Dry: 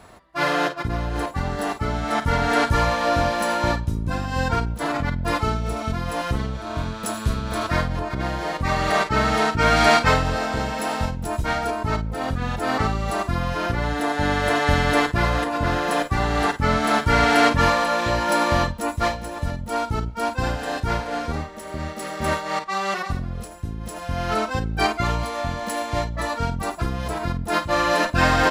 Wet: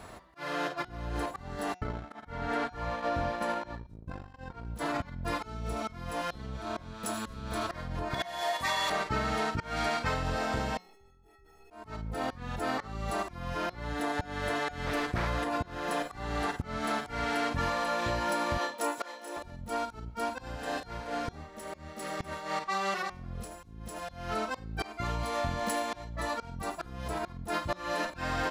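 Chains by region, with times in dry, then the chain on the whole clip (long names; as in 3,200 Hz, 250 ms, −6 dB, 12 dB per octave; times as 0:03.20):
0:01.74–0:04.65: noise gate −23 dBFS, range −37 dB + high-shelf EQ 4,100 Hz −11.5 dB + level that may fall only so fast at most 110 dB per second
0:08.14–0:08.90: spectral tilt +4 dB per octave + hollow resonant body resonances 690/970/1,800/3,400 Hz, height 18 dB, ringing for 85 ms
0:10.77–0:11.71: running median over 41 samples + output level in coarse steps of 16 dB + stiff-string resonator 390 Hz, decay 0.61 s, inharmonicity 0.03
0:14.86–0:15.27: hard clipping −13.5 dBFS + highs frequency-modulated by the lows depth 0.53 ms
0:18.58–0:19.37: high-pass filter 340 Hz 24 dB per octave + double-tracking delay 31 ms −2.5 dB
whole clip: volume swells 698 ms; downward compressor 6 to 1, threshold −28 dBFS; hum removal 181.7 Hz, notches 38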